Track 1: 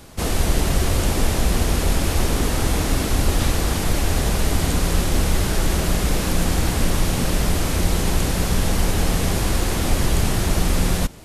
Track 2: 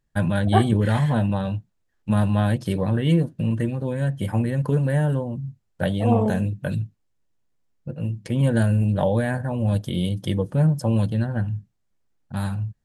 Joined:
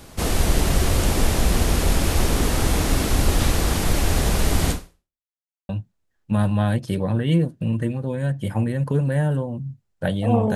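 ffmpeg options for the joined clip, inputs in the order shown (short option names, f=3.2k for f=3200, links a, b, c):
-filter_complex "[0:a]apad=whole_dur=10.55,atrim=end=10.55,asplit=2[a][b];[a]atrim=end=5.24,asetpts=PTS-STARTPTS,afade=t=out:st=4.71:d=0.53:c=exp[c];[b]atrim=start=5.24:end=5.69,asetpts=PTS-STARTPTS,volume=0[d];[1:a]atrim=start=1.47:end=6.33,asetpts=PTS-STARTPTS,afade=t=in:d=0.004:c=hsin[e];[c][d][e]concat=n=3:v=0:a=1"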